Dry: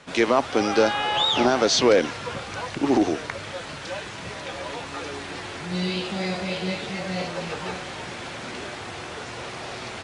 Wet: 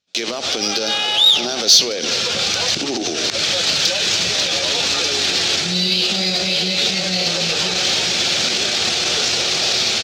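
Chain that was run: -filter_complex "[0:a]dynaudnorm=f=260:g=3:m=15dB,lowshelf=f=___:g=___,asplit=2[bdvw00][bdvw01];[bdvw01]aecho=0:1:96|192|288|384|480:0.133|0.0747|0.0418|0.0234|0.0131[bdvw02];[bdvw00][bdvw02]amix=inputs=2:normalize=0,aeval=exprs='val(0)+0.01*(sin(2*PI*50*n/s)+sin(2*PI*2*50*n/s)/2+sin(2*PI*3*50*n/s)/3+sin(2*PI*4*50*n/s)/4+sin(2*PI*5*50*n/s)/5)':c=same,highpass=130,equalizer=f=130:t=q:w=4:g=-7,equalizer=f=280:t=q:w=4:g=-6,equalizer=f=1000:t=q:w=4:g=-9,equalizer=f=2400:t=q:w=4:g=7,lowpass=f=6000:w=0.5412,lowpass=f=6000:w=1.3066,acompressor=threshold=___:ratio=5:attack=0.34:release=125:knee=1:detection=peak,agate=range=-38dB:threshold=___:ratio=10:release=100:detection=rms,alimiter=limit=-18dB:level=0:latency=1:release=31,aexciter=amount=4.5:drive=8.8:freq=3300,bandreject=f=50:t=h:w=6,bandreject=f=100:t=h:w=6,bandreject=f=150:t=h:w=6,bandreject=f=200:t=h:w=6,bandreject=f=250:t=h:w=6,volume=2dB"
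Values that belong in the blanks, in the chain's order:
200, 6, -19dB, -29dB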